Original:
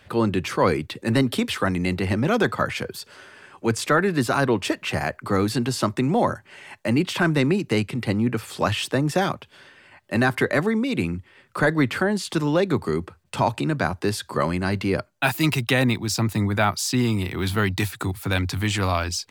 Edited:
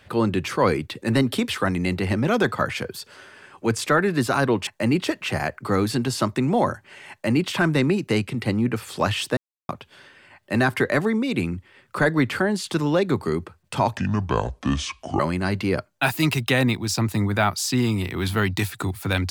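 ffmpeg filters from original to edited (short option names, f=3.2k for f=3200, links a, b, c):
-filter_complex "[0:a]asplit=7[a][b][c][d][e][f][g];[a]atrim=end=4.672[h];[b]atrim=start=6.718:end=7.112[i];[c]atrim=start=4.668:end=8.98,asetpts=PTS-STARTPTS,afade=t=out:st=4.308:d=0.004:c=hsin[j];[d]atrim=start=8.98:end=9.3,asetpts=PTS-STARTPTS,volume=0[k];[e]atrim=start=9.3:end=13.584,asetpts=PTS-STARTPTS,afade=t=in:d=0.004:c=hsin[l];[f]atrim=start=13.58:end=14.4,asetpts=PTS-STARTPTS,asetrate=29547,aresample=44100,atrim=end_sample=53973,asetpts=PTS-STARTPTS[m];[g]atrim=start=14.396[n];[h][i]acrossfade=d=0.004:c1=hsin:c2=hsin[o];[j][k][l]concat=n=3:v=0:a=1[p];[o][p]acrossfade=d=0.004:c1=hsin:c2=hsin[q];[q][m]acrossfade=d=0.004:c1=hsin:c2=hsin[r];[r][n]acrossfade=d=0.004:c1=hsin:c2=hsin"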